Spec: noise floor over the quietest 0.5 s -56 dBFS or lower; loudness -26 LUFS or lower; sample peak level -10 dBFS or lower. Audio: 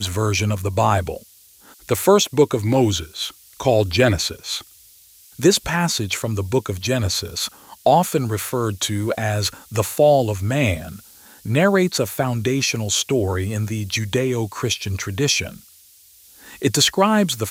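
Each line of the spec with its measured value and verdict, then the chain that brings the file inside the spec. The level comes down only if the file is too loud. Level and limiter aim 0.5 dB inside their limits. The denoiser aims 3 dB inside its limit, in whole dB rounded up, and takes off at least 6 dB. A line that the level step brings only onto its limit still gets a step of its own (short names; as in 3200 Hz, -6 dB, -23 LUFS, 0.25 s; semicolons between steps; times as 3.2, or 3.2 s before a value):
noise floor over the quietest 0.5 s -50 dBFS: fail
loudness -20.0 LUFS: fail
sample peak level -3.0 dBFS: fail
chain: gain -6.5 dB; limiter -10.5 dBFS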